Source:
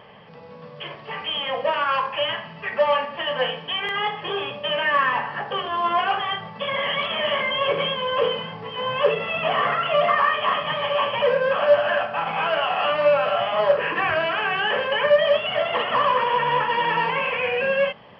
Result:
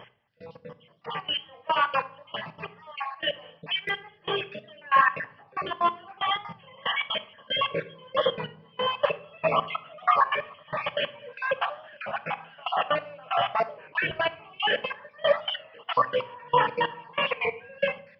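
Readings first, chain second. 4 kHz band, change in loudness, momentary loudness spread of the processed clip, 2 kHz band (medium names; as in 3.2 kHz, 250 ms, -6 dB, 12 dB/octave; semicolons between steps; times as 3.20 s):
-5.0 dB, -6.0 dB, 12 LU, -6.0 dB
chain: random holes in the spectrogram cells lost 37%; trance gate "x....xx." 186 bpm -24 dB; simulated room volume 1000 m³, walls furnished, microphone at 0.66 m; warped record 33 1/3 rpm, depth 100 cents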